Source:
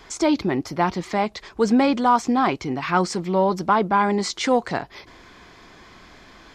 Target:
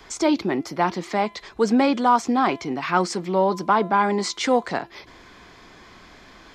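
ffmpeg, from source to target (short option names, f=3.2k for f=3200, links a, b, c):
-filter_complex "[0:a]bandreject=f=339.2:t=h:w=4,bandreject=f=678.4:t=h:w=4,bandreject=f=1.0176k:t=h:w=4,bandreject=f=1.3568k:t=h:w=4,bandreject=f=1.696k:t=h:w=4,bandreject=f=2.0352k:t=h:w=4,bandreject=f=2.3744k:t=h:w=4,bandreject=f=2.7136k:t=h:w=4,bandreject=f=3.0528k:t=h:w=4,bandreject=f=3.392k:t=h:w=4,bandreject=f=3.7312k:t=h:w=4,bandreject=f=4.0704k:t=h:w=4,acrossover=split=160|860|3300[a][b][c][d];[a]acompressor=threshold=-51dB:ratio=6[e];[e][b][c][d]amix=inputs=4:normalize=0"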